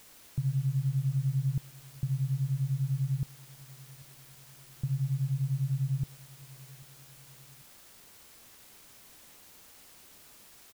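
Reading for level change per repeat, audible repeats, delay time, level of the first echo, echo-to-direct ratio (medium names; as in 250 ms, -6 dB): -5.0 dB, 2, 791 ms, -23.0 dB, -22.0 dB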